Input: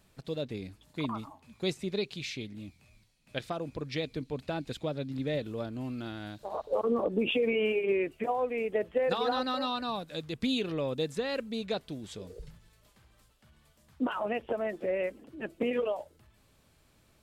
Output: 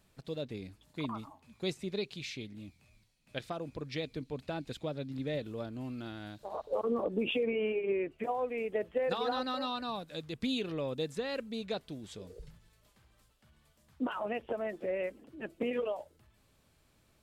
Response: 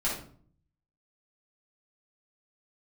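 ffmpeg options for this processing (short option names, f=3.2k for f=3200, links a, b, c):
-filter_complex "[0:a]asettb=1/sr,asplit=3[a][b][c];[a]atrim=end=7.434[d];[b]atrim=start=7.43:end=8.19,asetpts=PTS-STARTPTS,afade=t=in:d=0.004:c=qsin,afade=t=out:st=0.756:d=0.004:c=qsin,lowpass=f=2.1k:p=1[e];[c]atrim=start=8.186[f];[d][e]acrossfade=d=0.004:c1=hsin:c2=qsin[g];[g][f]acrossfade=d=0.004:c1=qsin:c2=hsin,volume=-3.5dB"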